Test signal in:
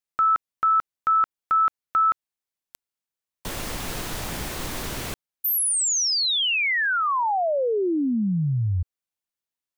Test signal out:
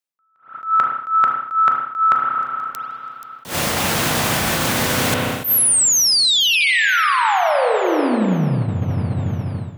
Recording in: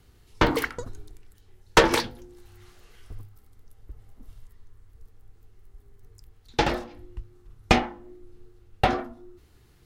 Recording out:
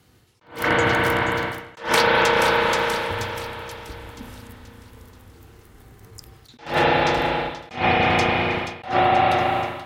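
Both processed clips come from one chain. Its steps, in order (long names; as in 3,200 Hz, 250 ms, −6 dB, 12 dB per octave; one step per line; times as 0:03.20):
dynamic equaliser 290 Hz, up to −7 dB, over −40 dBFS, Q 1.3
on a send: delay with a high-pass on its return 480 ms, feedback 49%, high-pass 4,500 Hz, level −13 dB
on the sum: spring reverb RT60 3.6 s, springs 32/36 ms, chirp 70 ms, DRR 1 dB
reversed playback
downward compressor 12 to 1, threshold −29 dBFS
reversed playback
notch filter 400 Hz, Q 12
automatic gain control gain up to 12 dB
high-pass filter 120 Hz 12 dB per octave
level that may rise only so fast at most 170 dB per second
level +4 dB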